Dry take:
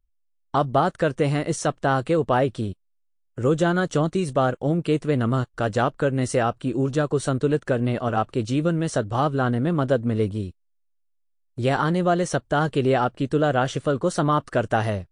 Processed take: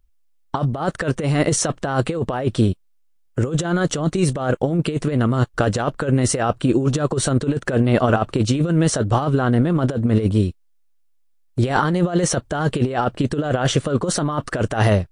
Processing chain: negative-ratio compressor -24 dBFS, ratio -0.5; gain +7 dB

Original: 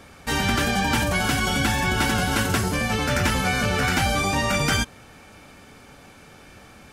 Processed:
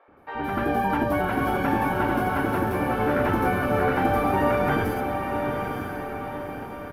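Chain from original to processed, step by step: tracing distortion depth 0.036 ms; EQ curve 220 Hz 0 dB, 310 Hz +8 dB, 1000 Hz +3 dB, 7600 Hz -27 dB, 12000 Hz -6 dB; AGC gain up to 11 dB; low shelf 160 Hz -7.5 dB; on a send: diffused feedback echo 0.93 s, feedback 50%, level -5 dB; on the sum: downsampling 32000 Hz; three bands offset in time mids, lows, highs 80/170 ms, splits 530/4100 Hz; gain -7 dB

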